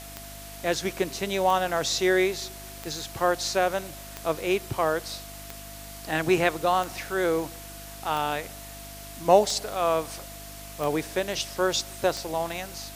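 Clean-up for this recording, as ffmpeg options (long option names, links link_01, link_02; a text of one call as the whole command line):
ffmpeg -i in.wav -af "adeclick=threshold=4,bandreject=frequency=50.4:width_type=h:width=4,bandreject=frequency=100.8:width_type=h:width=4,bandreject=frequency=151.2:width_type=h:width=4,bandreject=frequency=201.6:width_type=h:width=4,bandreject=frequency=252:width_type=h:width=4,bandreject=frequency=302.4:width_type=h:width=4,bandreject=frequency=680:width=30,afftdn=noise_reduction=29:noise_floor=-42" out.wav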